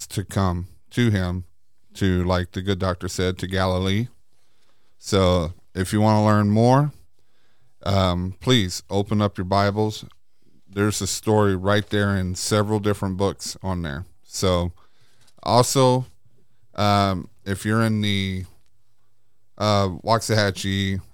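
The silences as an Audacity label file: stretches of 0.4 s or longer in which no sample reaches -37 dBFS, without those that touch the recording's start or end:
1.420000	1.950000	silence
4.070000	5.030000	silence
6.900000	7.830000	silence
10.120000	10.730000	silence
14.710000	15.390000	silence
16.080000	16.760000	silence
18.460000	19.580000	silence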